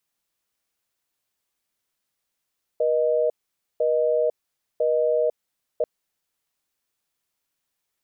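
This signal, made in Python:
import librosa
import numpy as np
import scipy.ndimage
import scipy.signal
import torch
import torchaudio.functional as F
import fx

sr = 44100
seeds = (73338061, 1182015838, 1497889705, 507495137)

y = fx.call_progress(sr, length_s=3.04, kind='busy tone', level_db=-21.0)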